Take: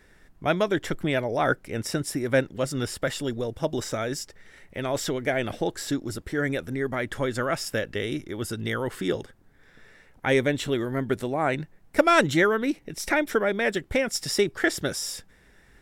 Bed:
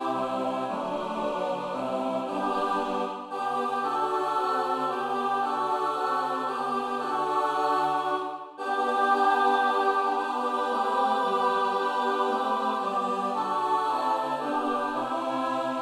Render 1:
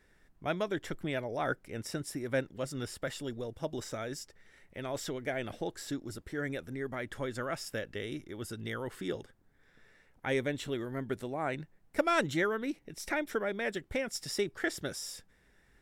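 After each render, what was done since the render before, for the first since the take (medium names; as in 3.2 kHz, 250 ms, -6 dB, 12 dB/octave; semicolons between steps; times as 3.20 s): trim -9.5 dB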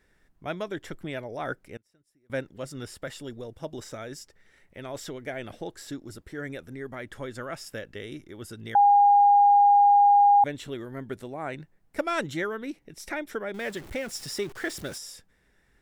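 1.76–2.30 s: inverted gate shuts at -34 dBFS, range -30 dB; 8.75–10.44 s: bleep 813 Hz -14 dBFS; 13.54–14.98 s: jump at every zero crossing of -40 dBFS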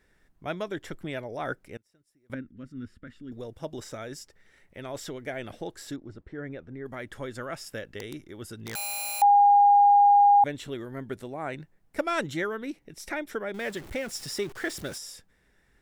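2.34–3.32 s: FFT filter 100 Hz 0 dB, 150 Hz -7 dB, 240 Hz +5 dB, 350 Hz -9 dB, 790 Hz -25 dB, 1.4 kHz -8 dB, 3.5 kHz -17 dB, 10 kHz -28 dB; 5.96–6.86 s: tape spacing loss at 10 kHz 31 dB; 7.98–9.22 s: integer overflow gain 27.5 dB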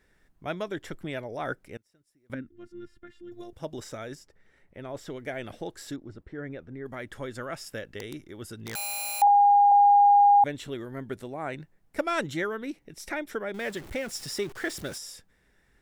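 2.49–3.53 s: robot voice 351 Hz; 4.15–5.10 s: treble shelf 2.1 kHz -9.5 dB; 9.27–9.72 s: high-pass 530 Hz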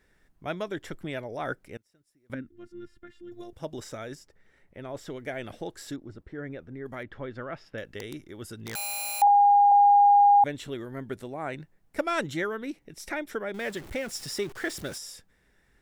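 7.03–7.78 s: distance through air 280 m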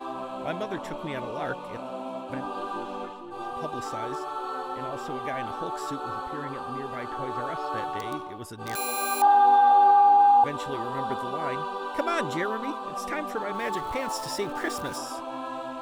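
add bed -6.5 dB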